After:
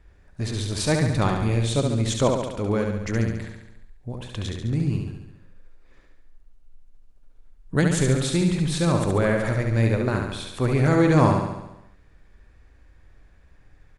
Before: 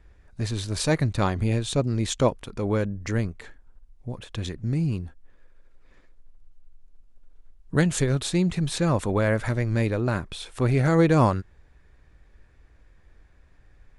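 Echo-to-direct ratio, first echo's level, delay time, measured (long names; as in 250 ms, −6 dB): −2.5 dB, −4.5 dB, 70 ms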